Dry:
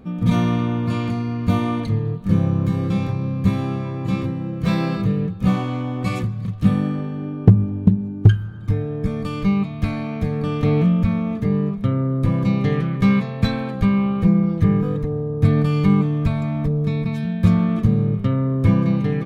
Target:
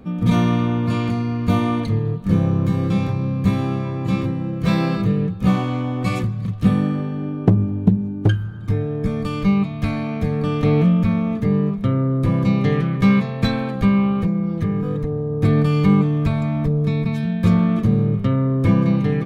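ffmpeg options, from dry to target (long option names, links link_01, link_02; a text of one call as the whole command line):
ffmpeg -i in.wav -filter_complex "[0:a]acrossover=split=180[link_01][link_02];[link_01]asoftclip=type=tanh:threshold=-16.5dB[link_03];[link_03][link_02]amix=inputs=2:normalize=0,asettb=1/sr,asplit=3[link_04][link_05][link_06];[link_04]atrim=end=14.204[link_07];[link_05]atrim=start=14.2:end=15.32,asetpts=PTS-STARTPTS,afade=type=in:duration=0.004:curve=qsin,afade=type=out:start_time=1.116:duration=0.004:curve=qsin,acompressor=threshold=-21dB:ratio=3[link_08];[link_06]atrim=start=15.316[link_09];[link_07][link_08]acrossfade=duration=0.004:curve1=hsin:curve2=qsin[link_10];[link_10][link_09]acrossfade=duration=0.004:curve1=qsin:curve2=hsin,volume=2dB" out.wav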